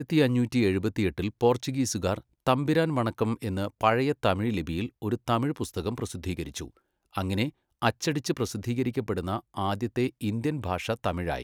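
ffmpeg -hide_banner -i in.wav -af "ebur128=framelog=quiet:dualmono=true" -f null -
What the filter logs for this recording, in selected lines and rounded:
Integrated loudness:
  I:         -25.4 LUFS
  Threshold: -35.5 LUFS
Loudness range:
  LRA:         4.6 LU
  Threshold: -45.8 LUFS
  LRA low:   -28.3 LUFS
  LRA high:  -23.7 LUFS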